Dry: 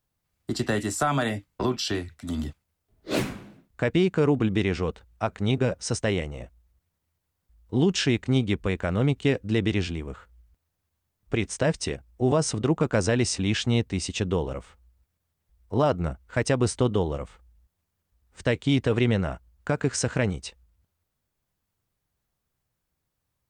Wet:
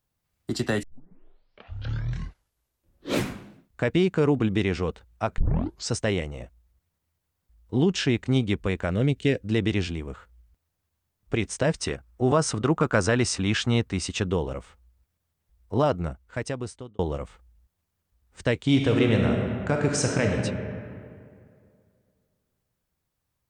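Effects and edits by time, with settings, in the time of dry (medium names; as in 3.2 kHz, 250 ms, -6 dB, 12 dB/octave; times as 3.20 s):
0.83 s: tape start 2.50 s
5.38 s: tape start 0.53 s
7.76–8.18 s: treble shelf 4.8 kHz -5.5 dB
8.91–9.41 s: high-order bell 1 kHz -8.5 dB 1 oct
11.75–14.27 s: peaking EQ 1.3 kHz +7.5 dB 0.84 oct
15.83–16.99 s: fade out
18.63–20.41 s: reverb throw, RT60 2.3 s, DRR 1 dB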